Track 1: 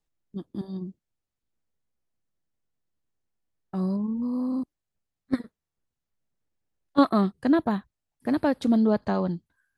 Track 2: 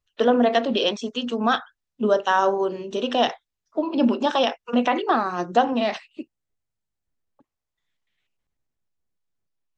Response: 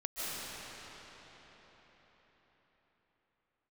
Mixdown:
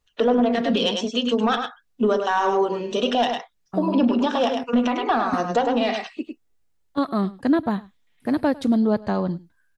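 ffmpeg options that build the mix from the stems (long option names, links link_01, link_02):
-filter_complex "[0:a]volume=2.5dB,asplit=2[link_01][link_02];[link_02]volume=-21.5dB[link_03];[1:a]aecho=1:1:4.2:0.31,acontrast=70,aphaser=in_gain=1:out_gain=1:delay=2.7:decay=0.28:speed=0.24:type=sinusoidal,volume=-2dB,asplit=2[link_04][link_05];[link_05]volume=-6.5dB[link_06];[link_03][link_06]amix=inputs=2:normalize=0,aecho=0:1:102:1[link_07];[link_01][link_04][link_07]amix=inputs=3:normalize=0,alimiter=limit=-11.5dB:level=0:latency=1:release=373"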